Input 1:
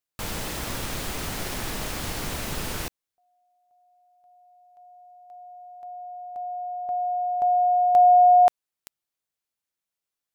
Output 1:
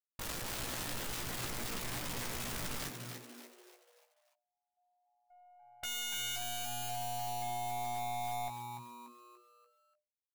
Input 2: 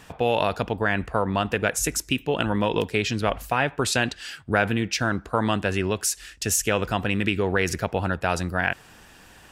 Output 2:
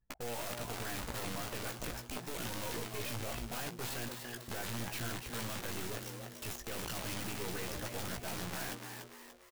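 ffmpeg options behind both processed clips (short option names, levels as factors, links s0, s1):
-filter_complex "[0:a]lowpass=3200,anlmdn=6.31,adynamicequalizer=threshold=0.0141:dfrequency=230:dqfactor=2.3:tfrequency=230:tqfactor=2.3:attack=5:release=100:ratio=0.438:range=1.5:mode=cutabove:tftype=bell,alimiter=limit=0.158:level=0:latency=1:release=119,aeval=exprs='(tanh(50.1*val(0)+0.6)-tanh(0.6))/50.1':c=same,aeval=exprs='(mod(84.1*val(0)+1,2)-1)/84.1':c=same,aeval=exprs='0.0126*(cos(1*acos(clip(val(0)/0.0126,-1,1)))-cos(1*PI/2))+0.00355*(cos(3*acos(clip(val(0)/0.0126,-1,1)))-cos(3*PI/2))':c=same,asplit=2[s0][s1];[s1]adelay=17,volume=0.501[s2];[s0][s2]amix=inputs=2:normalize=0,asplit=6[s3][s4][s5][s6][s7][s8];[s4]adelay=291,afreqshift=120,volume=0.473[s9];[s5]adelay=582,afreqshift=240,volume=0.209[s10];[s6]adelay=873,afreqshift=360,volume=0.0912[s11];[s7]adelay=1164,afreqshift=480,volume=0.0403[s12];[s8]adelay=1455,afreqshift=600,volume=0.0178[s13];[s3][s9][s10][s11][s12][s13]amix=inputs=6:normalize=0,volume=1.88"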